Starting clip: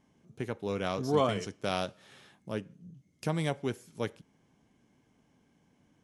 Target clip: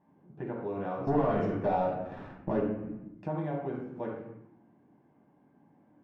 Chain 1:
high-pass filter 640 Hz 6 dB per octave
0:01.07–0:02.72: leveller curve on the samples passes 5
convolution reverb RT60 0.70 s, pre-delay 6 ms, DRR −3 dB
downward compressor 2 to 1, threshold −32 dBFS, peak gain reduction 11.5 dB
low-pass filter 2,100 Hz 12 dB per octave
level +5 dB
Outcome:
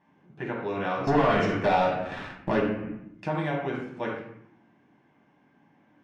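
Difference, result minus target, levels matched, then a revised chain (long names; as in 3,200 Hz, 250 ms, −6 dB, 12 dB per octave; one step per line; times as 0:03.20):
2,000 Hz band +9.5 dB; downward compressor: peak gain reduction −4 dB
high-pass filter 640 Hz 6 dB per octave
0:01.07–0:02.72: leveller curve on the samples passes 5
convolution reverb RT60 0.70 s, pre-delay 6 ms, DRR −3 dB
downward compressor 2 to 1, threshold −39.5 dBFS, peak gain reduction 15.5 dB
low-pass filter 820 Hz 12 dB per octave
level +5 dB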